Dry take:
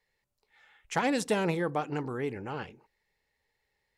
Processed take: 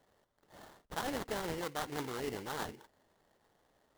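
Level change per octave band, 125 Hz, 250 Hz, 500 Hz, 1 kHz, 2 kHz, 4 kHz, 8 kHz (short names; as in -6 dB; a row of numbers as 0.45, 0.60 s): -10.5, -10.0, -8.5, -6.5, -7.5, -2.5, -4.0 dB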